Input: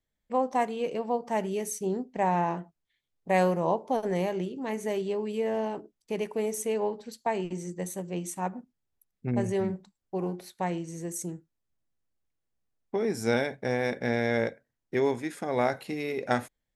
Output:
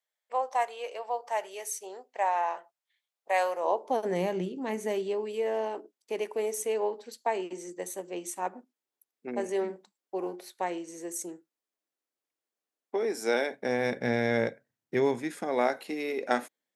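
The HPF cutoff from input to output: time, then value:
HPF 24 dB/oct
3.48 s 570 Hz
4.36 s 140 Hz
5.35 s 300 Hz
13.46 s 300 Hz
13.93 s 100 Hz
14.98 s 100 Hz
15.63 s 240 Hz

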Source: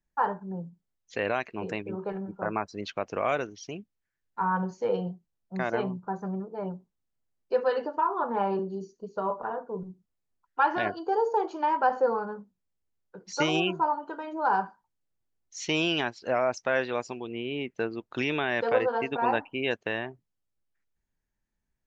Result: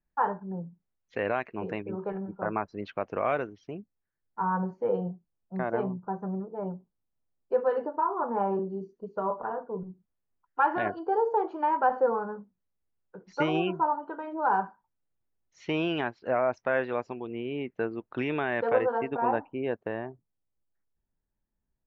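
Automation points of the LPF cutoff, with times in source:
3.39 s 2100 Hz
3.79 s 1300 Hz
8.62 s 1300 Hz
9.07 s 1900 Hz
18.82 s 1900 Hz
19.47 s 1100 Hz

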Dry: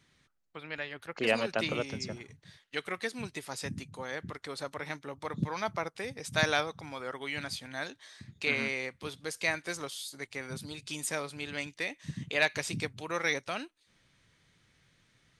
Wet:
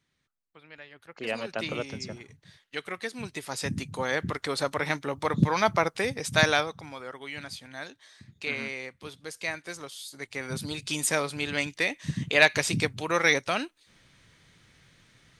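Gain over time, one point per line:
0.85 s -9 dB
1.76 s +0.5 dB
3.09 s +0.5 dB
4.01 s +10 dB
6.05 s +10 dB
7.14 s -2 dB
9.92 s -2 dB
10.65 s +8 dB

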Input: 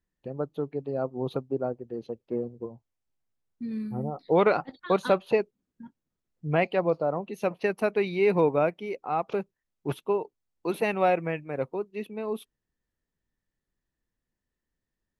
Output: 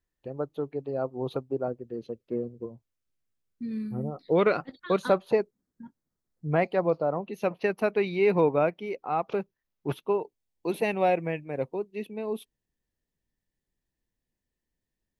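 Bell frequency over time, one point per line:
bell -9 dB 0.51 oct
190 Hz
from 1.68 s 830 Hz
from 5.05 s 2800 Hz
from 6.85 s 8300 Hz
from 10.2 s 1300 Hz

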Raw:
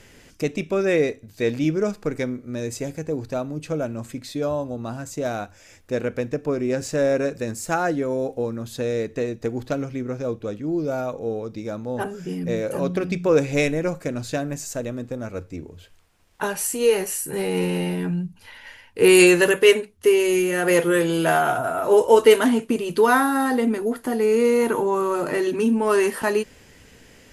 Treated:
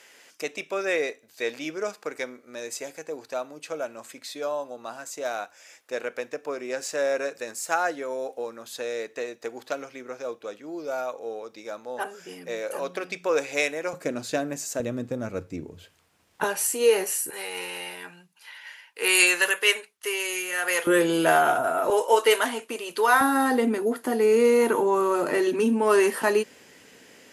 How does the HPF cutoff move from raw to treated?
640 Hz
from 13.93 s 260 Hz
from 14.8 s 110 Hz
from 16.44 s 350 Hz
from 17.3 s 1000 Hz
from 20.87 s 250 Hz
from 21.9 s 650 Hz
from 23.21 s 240 Hz

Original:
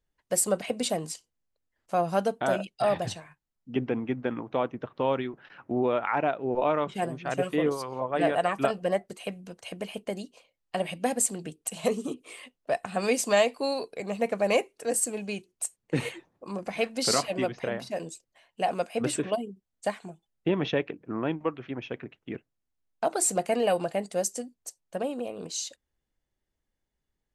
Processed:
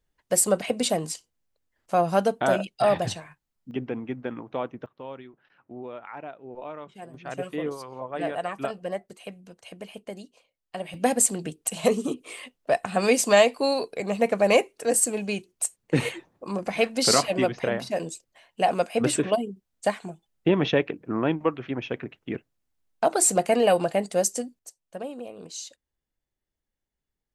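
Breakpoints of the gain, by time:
+4 dB
from 3.71 s -2.5 dB
from 4.86 s -12.5 dB
from 7.14 s -4.5 dB
from 10.94 s +5 dB
from 24.59 s -4 dB

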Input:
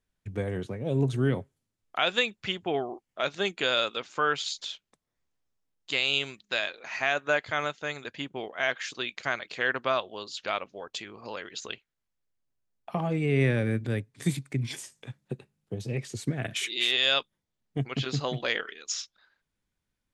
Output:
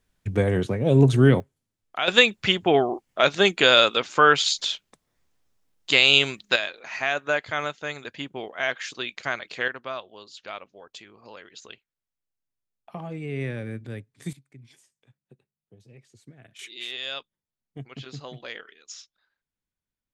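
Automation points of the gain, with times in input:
+9.5 dB
from 1.4 s 0 dB
from 2.08 s +10 dB
from 6.56 s +1.5 dB
from 9.68 s -6.5 dB
from 14.33 s -19 dB
from 16.59 s -9 dB

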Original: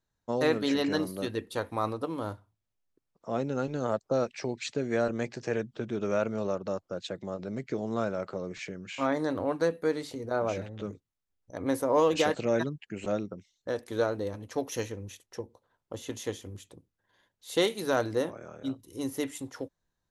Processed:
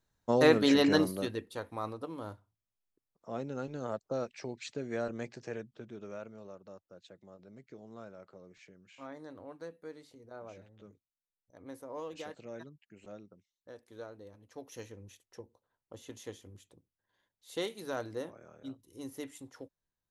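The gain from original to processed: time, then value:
1.02 s +3 dB
1.52 s -7.5 dB
5.3 s -7.5 dB
6.42 s -18 dB
14.36 s -18 dB
15.01 s -10 dB

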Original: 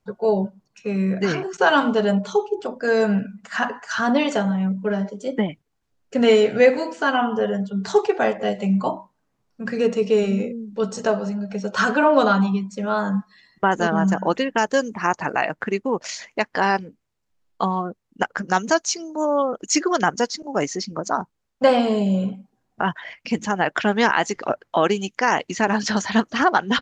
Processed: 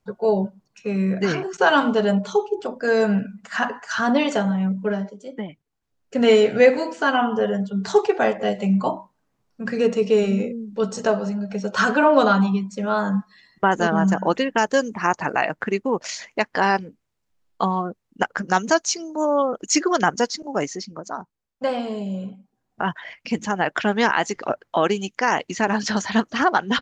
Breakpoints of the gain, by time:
4.89 s 0 dB
5.3 s -10 dB
6.34 s +0.5 dB
20.46 s +0.5 dB
21.06 s -8 dB
22.31 s -8 dB
22.91 s -1 dB

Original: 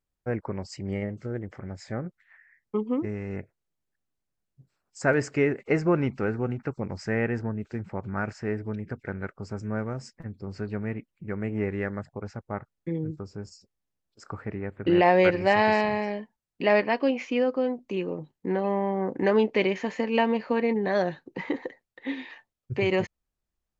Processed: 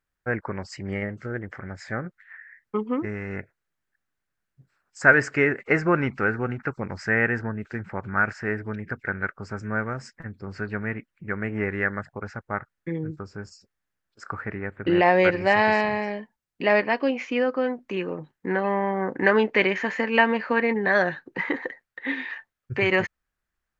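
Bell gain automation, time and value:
bell 1600 Hz 1.1 oct
14.52 s +13 dB
14.99 s +5 dB
17.17 s +5 dB
17.63 s +13.5 dB

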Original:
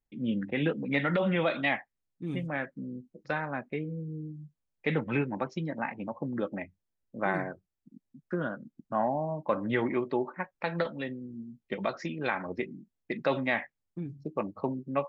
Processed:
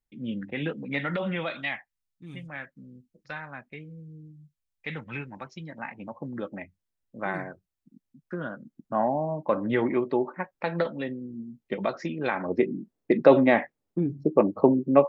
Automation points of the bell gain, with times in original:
bell 380 Hz 2.8 oct
1.3 s -3 dB
1.73 s -11.5 dB
5.52 s -11.5 dB
6.13 s -2.5 dB
8.4 s -2.5 dB
8.97 s +4.5 dB
12.31 s +4.5 dB
12.72 s +14.5 dB

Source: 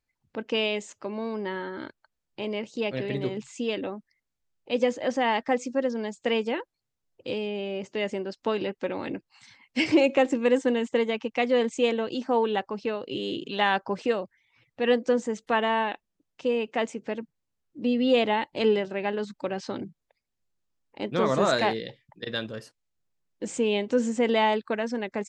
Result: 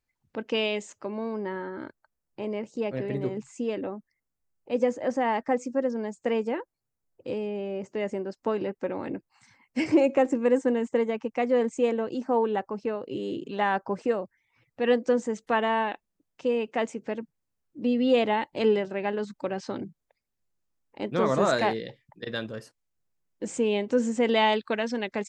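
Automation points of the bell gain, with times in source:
bell 3500 Hz 1.2 oct
0.74 s -2 dB
1.57 s -13.5 dB
14.18 s -13.5 dB
14.9 s -4.5 dB
24.07 s -4.5 dB
24.53 s +6 dB

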